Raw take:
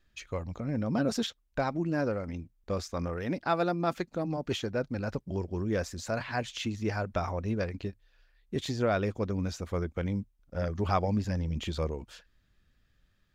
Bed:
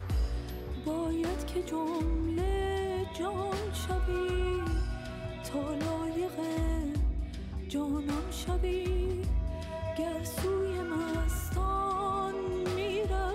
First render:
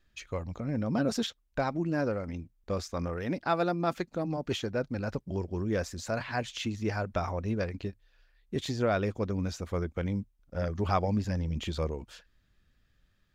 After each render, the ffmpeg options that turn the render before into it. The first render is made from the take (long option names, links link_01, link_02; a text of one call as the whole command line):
ffmpeg -i in.wav -af anull out.wav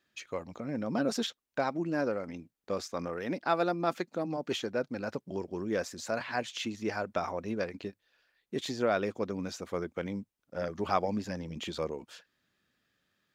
ffmpeg -i in.wav -af "highpass=220" out.wav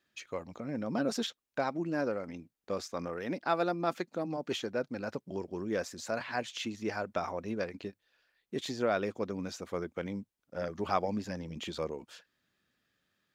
ffmpeg -i in.wav -af "volume=-1.5dB" out.wav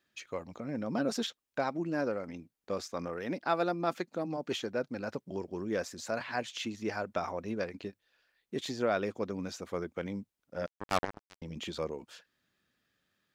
ffmpeg -i in.wav -filter_complex "[0:a]asettb=1/sr,asplit=3[link_01][link_02][link_03];[link_01]atrim=end=10.664[link_04];[link_02]atrim=start=10.66:end=11.42,asetpts=PTS-STARTPTS,afade=type=in:duration=0.004:curve=qsin,afade=type=out:start_time=0.756:duration=0.004:curve=qsin,acrusher=bits=3:mix=0:aa=0.5[link_05];[link_03]atrim=start=11.416[link_06];[link_04][link_05]acrossfade=duration=0.004:curve1=hsin:curve2=qsin[link_07];[link_07][link_06]acrossfade=duration=0.004:curve1=qsin:curve2=hsin" out.wav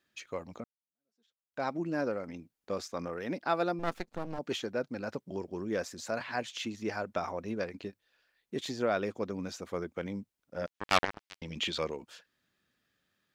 ffmpeg -i in.wav -filter_complex "[0:a]asettb=1/sr,asplit=3[link_01][link_02][link_03];[link_01]atrim=end=3.794[link_04];[link_02]atrim=start=3.79:end=4.39,asetpts=PTS-STARTPTS,afade=type=in:duration=0.004:curve=qsin,afade=type=out:start_time=0.596:duration=0.004:curve=qsin,aeval=exprs='max(val(0),0)':channel_layout=same[link_05];[link_03]atrim=start=4.386[link_06];[link_04][link_05]acrossfade=duration=0.004:curve1=hsin:curve2=qsin[link_07];[link_07][link_06]acrossfade=duration=0.004:curve1=qsin:curve2=hsin,asettb=1/sr,asplit=3[link_08][link_09][link_10];[link_08]atrim=end=10.744[link_11];[link_09]atrim=start=10.74:end=11.97,asetpts=PTS-STARTPTS,afade=type=in:duration=0.004:curve=qsin,afade=type=out:start_time=1.226:duration=0.004:curve=qsin,equalizer=frequency=2900:width_type=o:width=2.3:gain=10[link_12];[link_10]atrim=start=11.966[link_13];[link_11][link_12]acrossfade=duration=0.004:curve1=hsin:curve2=qsin[link_14];[link_14][link_13]acrossfade=duration=0.004:curve1=qsin:curve2=hsin,asplit=2[link_15][link_16];[link_15]atrim=end=0.64,asetpts=PTS-STARTPTS,afade=type=out:start_time=0.636:duration=0.004:curve=hsin[link_17];[link_16]atrim=start=0.64,asetpts=PTS-STARTPTS,afade=type=in:duration=1:curve=exp[link_18];[link_17][link_18]concat=n=2:v=0:a=1" out.wav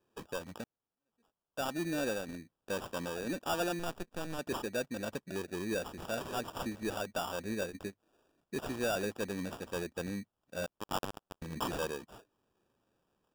ffmpeg -i in.wav -af "acrusher=samples=21:mix=1:aa=0.000001,asoftclip=type=tanh:threshold=-26dB" out.wav